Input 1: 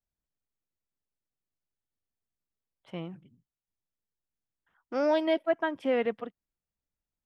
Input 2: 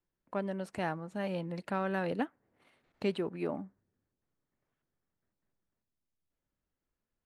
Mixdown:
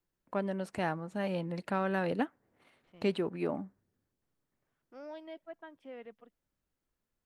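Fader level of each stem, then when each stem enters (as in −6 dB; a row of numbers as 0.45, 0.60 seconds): −20.0, +1.5 decibels; 0.00, 0.00 seconds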